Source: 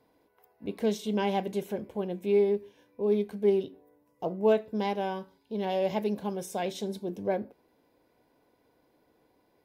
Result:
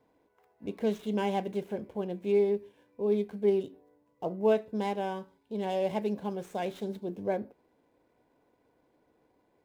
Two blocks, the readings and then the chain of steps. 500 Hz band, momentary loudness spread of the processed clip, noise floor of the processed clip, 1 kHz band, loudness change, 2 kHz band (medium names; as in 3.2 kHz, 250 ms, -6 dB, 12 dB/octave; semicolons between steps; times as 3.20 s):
-1.5 dB, 11 LU, -71 dBFS, -1.5 dB, -1.5 dB, -2.0 dB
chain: median filter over 9 samples; trim -1.5 dB